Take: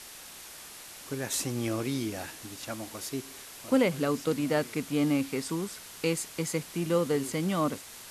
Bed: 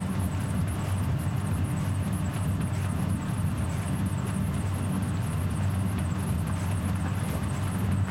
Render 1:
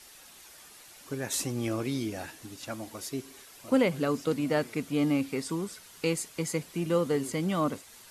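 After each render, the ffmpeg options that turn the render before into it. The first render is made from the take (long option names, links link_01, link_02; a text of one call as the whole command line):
ffmpeg -i in.wav -af "afftdn=noise_reduction=8:noise_floor=-47" out.wav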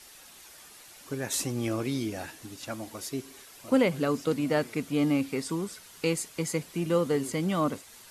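ffmpeg -i in.wav -af "volume=1dB" out.wav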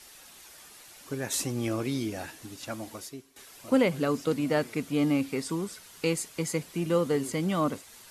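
ffmpeg -i in.wav -filter_complex "[0:a]asplit=2[link_01][link_02];[link_01]atrim=end=3.36,asetpts=PTS-STARTPTS,afade=type=out:start_time=2.94:duration=0.42:curve=qua:silence=0.16788[link_03];[link_02]atrim=start=3.36,asetpts=PTS-STARTPTS,afade=type=in:duration=0.004:curve=hsin:silence=0.16788[link_04];[link_03][link_04]concat=n=2:v=0:a=1" out.wav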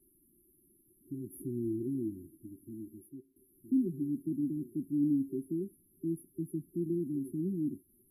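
ffmpeg -i in.wav -af "bass=frequency=250:gain=-8,treble=frequency=4000:gain=-13,afftfilt=real='re*(1-between(b*sr/4096,390,10000))':imag='im*(1-between(b*sr/4096,390,10000))':win_size=4096:overlap=0.75" out.wav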